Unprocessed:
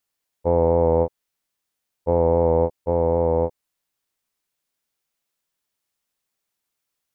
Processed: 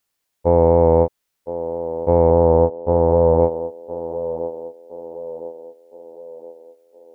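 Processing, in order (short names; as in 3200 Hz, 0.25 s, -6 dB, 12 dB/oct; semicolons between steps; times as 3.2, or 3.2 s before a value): 2.3–3.41 steep low-pass 1800 Hz 36 dB/oct; narrowing echo 1.015 s, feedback 50%, band-pass 470 Hz, level -11 dB; gain +4.5 dB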